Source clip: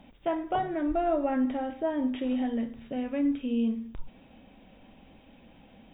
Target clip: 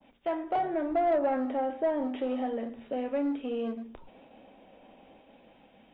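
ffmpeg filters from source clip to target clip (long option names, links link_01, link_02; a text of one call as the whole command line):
ffmpeg -i in.wav -filter_complex "[0:a]agate=range=-33dB:threshold=-52dB:ratio=3:detection=peak,highshelf=frequency=2500:gain=8,bandreject=frequency=58.86:width_type=h:width=4,bandreject=frequency=117.72:width_type=h:width=4,bandreject=frequency=176.58:width_type=h:width=4,bandreject=frequency=235.44:width_type=h:width=4,bandreject=frequency=294.3:width_type=h:width=4,bandreject=frequency=353.16:width_type=h:width=4,bandreject=frequency=412.02:width_type=h:width=4,acrossover=split=330|740[link_01][link_02][link_03];[link_01]asoftclip=type=hard:threshold=-35.5dB[link_04];[link_02]dynaudnorm=framelen=130:gausssize=9:maxgain=8dB[link_05];[link_03]flanger=delay=6.3:depth=7.7:regen=77:speed=0.88:shape=triangular[link_06];[link_04][link_05][link_06]amix=inputs=3:normalize=0,asplit=2[link_07][link_08];[link_08]highpass=frequency=720:poles=1,volume=15dB,asoftclip=type=tanh:threshold=-12dB[link_09];[link_07][link_09]amix=inputs=2:normalize=0,lowpass=frequency=1800:poles=1,volume=-6dB,adynamicequalizer=threshold=0.0126:dfrequency=1900:dqfactor=0.7:tfrequency=1900:tqfactor=0.7:attack=5:release=100:ratio=0.375:range=1.5:mode=cutabove:tftype=highshelf,volume=-6dB" out.wav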